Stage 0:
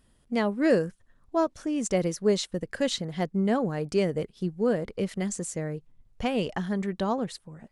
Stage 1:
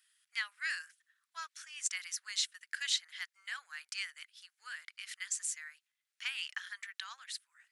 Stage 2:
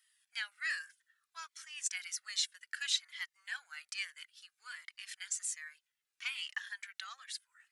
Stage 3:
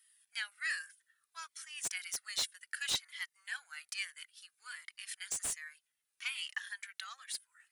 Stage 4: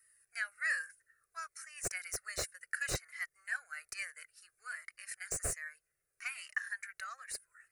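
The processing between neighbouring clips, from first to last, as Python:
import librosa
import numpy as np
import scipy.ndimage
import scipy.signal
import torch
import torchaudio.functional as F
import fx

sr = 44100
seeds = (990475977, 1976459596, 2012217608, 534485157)

y1 = scipy.signal.sosfilt(scipy.signal.butter(6, 1500.0, 'highpass', fs=sr, output='sos'), x)
y2 = fx.comb_cascade(y1, sr, direction='falling', hz=0.62)
y2 = y2 * 10.0 ** (3.5 / 20.0)
y3 = fx.peak_eq(y2, sr, hz=9700.0, db=11.0, octaves=0.35)
y3 = fx.slew_limit(y3, sr, full_power_hz=170.0)
y4 = fx.tilt_shelf(y3, sr, db=8.5, hz=790.0)
y4 = fx.fixed_phaser(y4, sr, hz=910.0, stages=6)
y4 = y4 * 10.0 ** (9.5 / 20.0)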